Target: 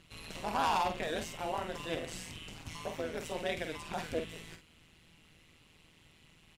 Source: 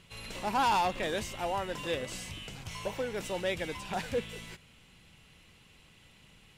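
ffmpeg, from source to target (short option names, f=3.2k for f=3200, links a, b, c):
-filter_complex "[0:a]tremolo=f=160:d=0.919,asplit=2[a][b];[b]adelay=48,volume=-8dB[c];[a][c]amix=inputs=2:normalize=0"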